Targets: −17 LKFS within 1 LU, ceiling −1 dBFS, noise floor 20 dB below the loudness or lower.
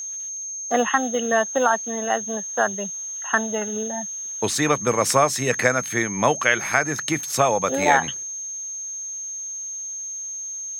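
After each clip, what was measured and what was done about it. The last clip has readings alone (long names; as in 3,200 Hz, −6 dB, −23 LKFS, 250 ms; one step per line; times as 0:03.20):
interfering tone 6,400 Hz; level of the tone −29 dBFS; integrated loudness −22.5 LKFS; sample peak −3.0 dBFS; target loudness −17.0 LKFS
→ notch filter 6,400 Hz, Q 30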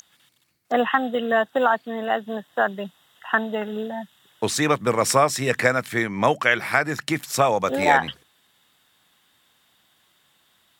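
interfering tone none found; integrated loudness −22.0 LKFS; sample peak −3.5 dBFS; target loudness −17.0 LKFS
→ level +5 dB
brickwall limiter −1 dBFS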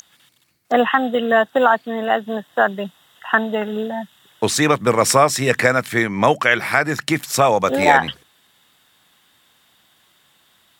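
integrated loudness −17.5 LKFS; sample peak −1.0 dBFS; background noise floor −59 dBFS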